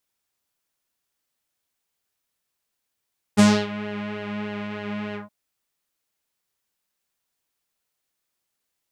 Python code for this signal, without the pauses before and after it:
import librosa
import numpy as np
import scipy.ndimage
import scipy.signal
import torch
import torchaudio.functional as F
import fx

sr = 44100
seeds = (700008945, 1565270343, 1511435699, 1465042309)

y = fx.sub_patch_pwm(sr, seeds[0], note=56, wave2='saw', interval_st=0, detune_cents=16, level2_db=-9.0, sub_db=-13.0, noise_db=-30.0, kind='lowpass', cutoff_hz=860.0, q=1.8, env_oct=3.5, env_decay_s=0.34, env_sustain_pct=45, attack_ms=25.0, decay_s=0.27, sustain_db=-17.5, release_s=0.14, note_s=1.78, lfo_hz=3.3, width_pct=33, width_swing_pct=16)